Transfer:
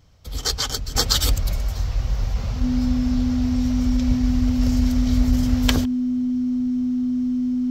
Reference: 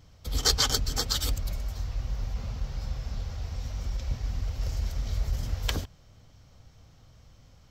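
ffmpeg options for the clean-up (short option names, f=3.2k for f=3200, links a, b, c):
-af "bandreject=f=250:w=30,asetnsamples=n=441:p=0,asendcmd='0.95 volume volume -9dB',volume=0dB"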